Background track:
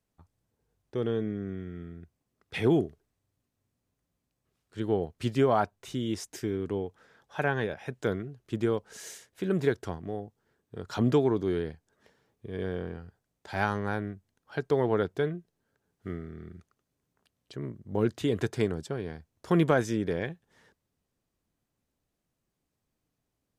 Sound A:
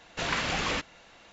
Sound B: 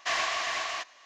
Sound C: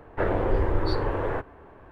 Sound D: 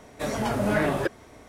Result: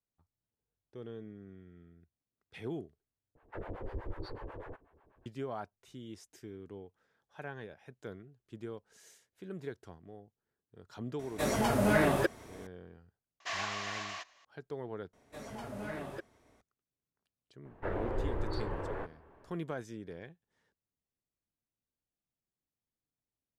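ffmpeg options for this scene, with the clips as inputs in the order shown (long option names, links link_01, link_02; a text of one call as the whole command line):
ffmpeg -i bed.wav -i cue0.wav -i cue1.wav -i cue2.wav -i cue3.wav -filter_complex "[3:a]asplit=2[link_01][link_02];[4:a]asplit=2[link_03][link_04];[0:a]volume=-15.5dB[link_05];[link_01]acrossover=split=580[link_06][link_07];[link_06]aeval=exprs='val(0)*(1-1/2+1/2*cos(2*PI*8.1*n/s))':channel_layout=same[link_08];[link_07]aeval=exprs='val(0)*(1-1/2-1/2*cos(2*PI*8.1*n/s))':channel_layout=same[link_09];[link_08][link_09]amix=inputs=2:normalize=0[link_10];[link_03]highshelf=frequency=9100:gain=6.5[link_11];[link_05]asplit=3[link_12][link_13][link_14];[link_12]atrim=end=3.354[link_15];[link_10]atrim=end=1.91,asetpts=PTS-STARTPTS,volume=-13dB[link_16];[link_13]atrim=start=5.256:end=15.134[link_17];[link_04]atrim=end=1.48,asetpts=PTS-STARTPTS,volume=-17dB[link_18];[link_14]atrim=start=16.606[link_19];[link_11]atrim=end=1.48,asetpts=PTS-STARTPTS,volume=-2.5dB,afade=type=in:duration=0.004:curve=hsin,afade=type=out:start_time=1.476:duration=0.004:curve=hsin,adelay=11190[link_20];[2:a]atrim=end=1.05,asetpts=PTS-STARTPTS,volume=-8.5dB,afade=type=in:duration=0.004:curve=hsin,afade=type=out:start_time=1.046:duration=0.004:curve=hsin,adelay=13400[link_21];[link_02]atrim=end=1.91,asetpts=PTS-STARTPTS,volume=-11dB,afade=type=in:duration=0.004:curve=hsin,afade=type=out:start_time=1.906:duration=0.004:curve=hsin,adelay=17650[link_22];[link_15][link_16]acrossfade=duration=0.004:curve1=hsin:curve2=hsin[link_23];[link_23][link_17]acrossfade=duration=0.004:curve1=hsin:curve2=hsin[link_24];[link_24][link_18]acrossfade=duration=0.004:curve1=hsin:curve2=hsin[link_25];[link_25][link_19]acrossfade=duration=0.004:curve1=hsin:curve2=hsin[link_26];[link_26][link_20][link_21][link_22]amix=inputs=4:normalize=0" out.wav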